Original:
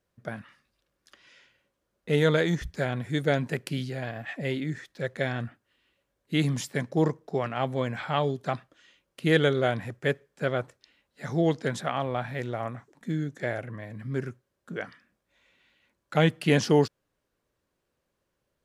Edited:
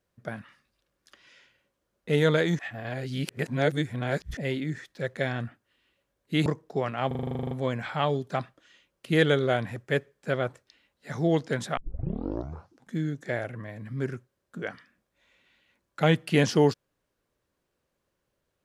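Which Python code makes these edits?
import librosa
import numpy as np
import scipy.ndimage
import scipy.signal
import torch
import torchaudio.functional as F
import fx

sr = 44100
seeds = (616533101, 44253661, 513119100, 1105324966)

y = fx.edit(x, sr, fx.reverse_span(start_s=2.59, length_s=1.78),
    fx.cut(start_s=6.46, length_s=0.58),
    fx.stutter(start_s=7.65, slice_s=0.04, count=12),
    fx.tape_start(start_s=11.91, length_s=1.19), tone=tone)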